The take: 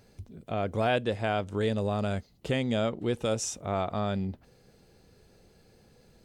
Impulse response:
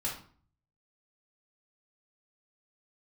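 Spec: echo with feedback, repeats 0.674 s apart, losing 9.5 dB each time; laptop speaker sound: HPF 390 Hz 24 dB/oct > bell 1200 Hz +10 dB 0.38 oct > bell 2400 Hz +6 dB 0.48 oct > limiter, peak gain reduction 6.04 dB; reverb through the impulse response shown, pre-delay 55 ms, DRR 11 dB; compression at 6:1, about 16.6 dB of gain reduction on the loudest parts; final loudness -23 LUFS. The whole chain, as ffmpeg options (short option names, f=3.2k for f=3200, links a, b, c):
-filter_complex "[0:a]acompressor=threshold=-42dB:ratio=6,aecho=1:1:674|1348|2022|2696:0.335|0.111|0.0365|0.012,asplit=2[a][b];[1:a]atrim=start_sample=2205,adelay=55[c];[b][c]afir=irnorm=-1:irlink=0,volume=-14.5dB[d];[a][d]amix=inputs=2:normalize=0,highpass=f=390:w=0.5412,highpass=f=390:w=1.3066,equalizer=f=1.2k:t=o:w=0.38:g=10,equalizer=f=2.4k:t=o:w=0.48:g=6,volume=24.5dB,alimiter=limit=-11dB:level=0:latency=1"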